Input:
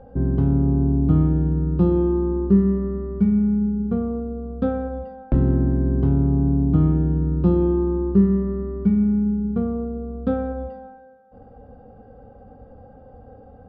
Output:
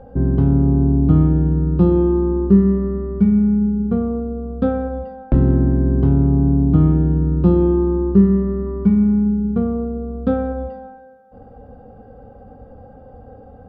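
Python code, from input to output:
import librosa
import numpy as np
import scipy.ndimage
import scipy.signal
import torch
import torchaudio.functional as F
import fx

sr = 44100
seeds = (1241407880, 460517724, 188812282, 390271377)

y = fx.peak_eq(x, sr, hz=1000.0, db=7.5, octaves=0.34, at=(8.66, 9.29))
y = y * 10.0 ** (4.0 / 20.0)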